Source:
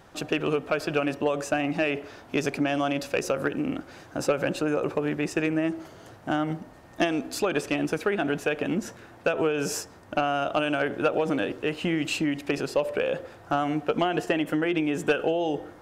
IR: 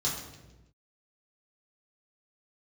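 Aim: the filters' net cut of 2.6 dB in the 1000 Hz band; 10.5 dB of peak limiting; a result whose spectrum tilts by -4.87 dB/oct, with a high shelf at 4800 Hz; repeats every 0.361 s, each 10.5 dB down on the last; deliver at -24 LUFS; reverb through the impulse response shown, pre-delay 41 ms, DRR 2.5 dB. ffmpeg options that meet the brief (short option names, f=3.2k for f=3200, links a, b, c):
-filter_complex "[0:a]equalizer=f=1k:t=o:g=-4.5,highshelf=f=4.8k:g=4.5,alimiter=limit=-23.5dB:level=0:latency=1,aecho=1:1:361|722|1083:0.299|0.0896|0.0269,asplit=2[a][b];[1:a]atrim=start_sample=2205,adelay=41[c];[b][c]afir=irnorm=-1:irlink=0,volume=-9dB[d];[a][d]amix=inputs=2:normalize=0,volume=6dB"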